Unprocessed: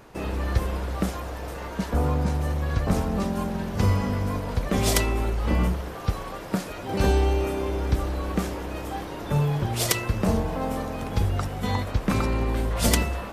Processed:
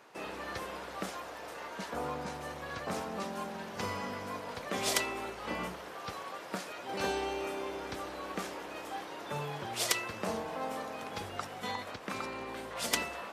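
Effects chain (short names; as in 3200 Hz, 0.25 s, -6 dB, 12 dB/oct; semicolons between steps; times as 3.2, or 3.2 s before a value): 11.7–12.93 compressor 4:1, threshold -23 dBFS, peak gain reduction 6.5 dB; weighting filter A; gain -5.5 dB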